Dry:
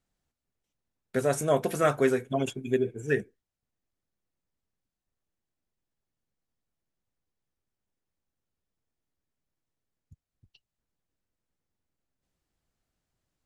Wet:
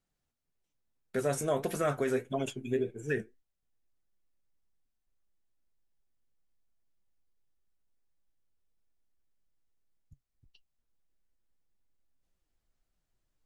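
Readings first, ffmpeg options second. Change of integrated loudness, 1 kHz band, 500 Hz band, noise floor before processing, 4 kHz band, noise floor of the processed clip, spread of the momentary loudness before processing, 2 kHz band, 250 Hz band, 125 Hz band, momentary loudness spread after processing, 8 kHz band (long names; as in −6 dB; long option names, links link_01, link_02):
−5.0 dB, −6.0 dB, −5.0 dB, below −85 dBFS, −4.0 dB, −83 dBFS, 6 LU, −5.5 dB, −5.0 dB, −4.5 dB, 5 LU, −3.0 dB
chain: -af "asubboost=boost=3.5:cutoff=53,flanger=delay=4.8:depth=4.5:regen=68:speed=1.7:shape=triangular,alimiter=limit=-21.5dB:level=0:latency=1:release=38,volume=1.5dB"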